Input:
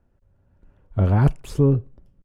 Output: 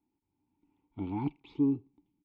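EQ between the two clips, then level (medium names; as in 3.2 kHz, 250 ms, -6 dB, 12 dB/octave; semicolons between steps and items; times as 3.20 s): dynamic bell 1.5 kHz, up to -3 dB, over -38 dBFS, Q 0.71; vowel filter u; resonant low-pass 3.7 kHz, resonance Q 4.8; 0.0 dB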